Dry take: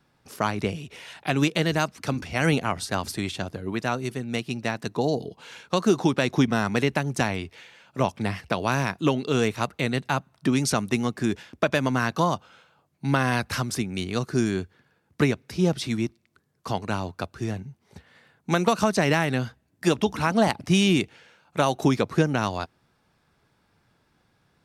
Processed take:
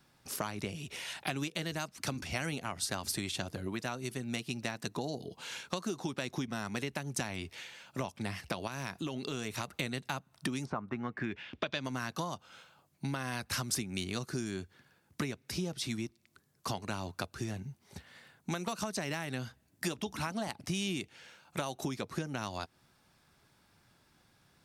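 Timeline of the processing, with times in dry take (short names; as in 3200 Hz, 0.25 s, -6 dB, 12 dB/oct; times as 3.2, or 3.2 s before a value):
8.67–9.73 compressor 2.5:1, threshold -30 dBFS
10.64–11.83 synth low-pass 940 Hz -> 4400 Hz, resonance Q 2.5
whole clip: notch 460 Hz, Q 12; compressor 6:1, threshold -32 dBFS; high shelf 3800 Hz +9 dB; gain -2 dB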